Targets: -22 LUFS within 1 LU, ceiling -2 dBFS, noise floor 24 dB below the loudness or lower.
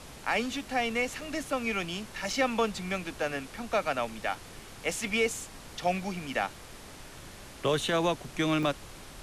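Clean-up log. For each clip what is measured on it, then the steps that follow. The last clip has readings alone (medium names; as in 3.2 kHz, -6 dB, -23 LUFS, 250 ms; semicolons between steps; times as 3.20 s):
dropouts 3; longest dropout 3.0 ms; noise floor -48 dBFS; noise floor target -55 dBFS; loudness -31.0 LUFS; peak level -16.5 dBFS; loudness target -22.0 LUFS
-> interpolate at 1.21/2.33/8.63 s, 3 ms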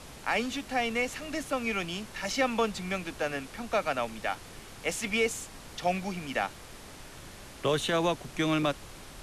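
dropouts 0; noise floor -48 dBFS; noise floor target -55 dBFS
-> noise print and reduce 7 dB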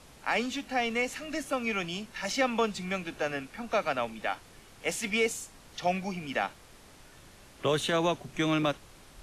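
noise floor -54 dBFS; noise floor target -55 dBFS
-> noise print and reduce 6 dB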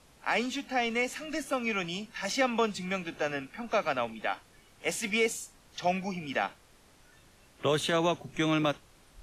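noise floor -60 dBFS; loudness -31.0 LUFS; peak level -16.5 dBFS; loudness target -22.0 LUFS
-> trim +9 dB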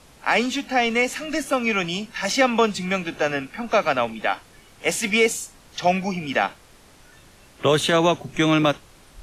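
loudness -22.0 LUFS; peak level -7.5 dBFS; noise floor -51 dBFS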